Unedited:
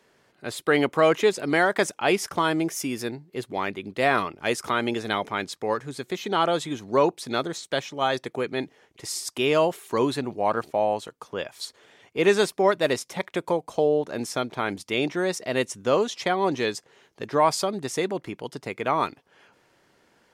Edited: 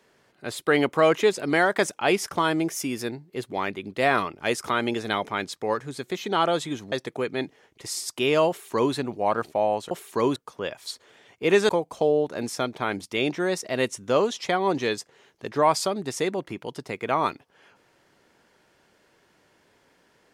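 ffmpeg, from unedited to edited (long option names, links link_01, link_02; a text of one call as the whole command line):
ffmpeg -i in.wav -filter_complex "[0:a]asplit=5[link_01][link_02][link_03][link_04][link_05];[link_01]atrim=end=6.922[link_06];[link_02]atrim=start=8.108:end=11.102[link_07];[link_03]atrim=start=9.678:end=10.132[link_08];[link_04]atrim=start=11.098:end=12.432[link_09];[link_05]atrim=start=13.458[link_10];[link_06][link_07]acrossfade=duration=0.004:curve1=hsin:curve2=hsin[link_11];[link_11][link_08]acrossfade=duration=0.004:curve1=hsin:curve2=hsin[link_12];[link_12][link_09]acrossfade=duration=0.004:curve1=hsin:curve2=hsin[link_13];[link_13][link_10]acrossfade=duration=0.004:curve1=hsin:curve2=hsin" out.wav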